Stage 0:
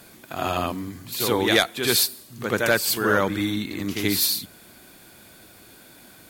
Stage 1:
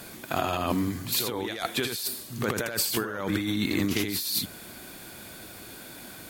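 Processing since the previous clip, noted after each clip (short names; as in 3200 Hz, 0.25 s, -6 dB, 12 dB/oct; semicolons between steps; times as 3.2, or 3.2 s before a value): negative-ratio compressor -29 dBFS, ratio -1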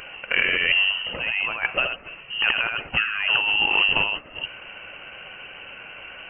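inverted band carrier 3000 Hz; gain +6.5 dB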